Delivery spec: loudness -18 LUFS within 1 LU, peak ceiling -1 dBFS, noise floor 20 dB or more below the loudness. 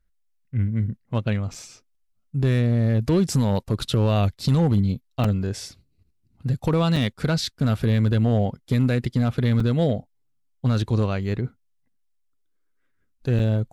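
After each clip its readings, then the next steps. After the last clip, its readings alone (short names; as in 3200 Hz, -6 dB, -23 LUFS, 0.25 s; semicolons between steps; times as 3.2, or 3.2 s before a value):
clipped 0.8%; flat tops at -12.5 dBFS; dropouts 5; longest dropout 4.1 ms; loudness -23.0 LUFS; peak -12.5 dBFS; loudness target -18.0 LUFS
-> clip repair -12.5 dBFS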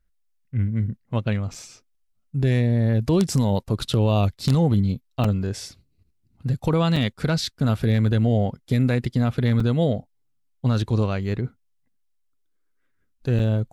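clipped 0.0%; dropouts 5; longest dropout 4.1 ms
-> interpolate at 1.54/5.24/6.96/9.6/13.39, 4.1 ms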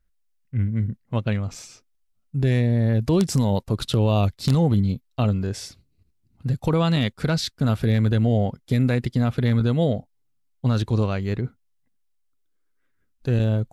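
dropouts 0; loudness -23.0 LUFS; peak -3.5 dBFS; loudness target -18.0 LUFS
-> gain +5 dB; limiter -1 dBFS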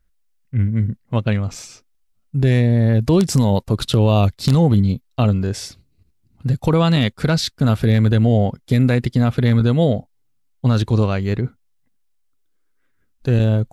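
loudness -18.0 LUFS; peak -1.0 dBFS; noise floor -63 dBFS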